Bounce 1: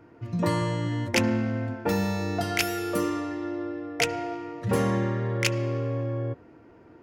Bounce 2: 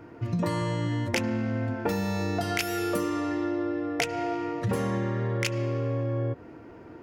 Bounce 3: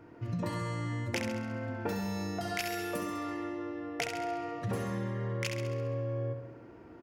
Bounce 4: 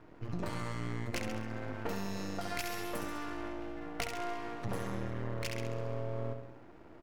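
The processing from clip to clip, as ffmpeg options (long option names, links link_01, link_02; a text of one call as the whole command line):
ffmpeg -i in.wav -af "acompressor=threshold=-31dB:ratio=6,volume=6dB" out.wav
ffmpeg -i in.wav -af "aecho=1:1:67|134|201|268|335|402|469:0.473|0.27|0.154|0.0876|0.0499|0.0285|0.0162,volume=-7dB" out.wav
ffmpeg -i in.wav -af "aeval=exprs='max(val(0),0)':channel_layout=same,volume=1dB" out.wav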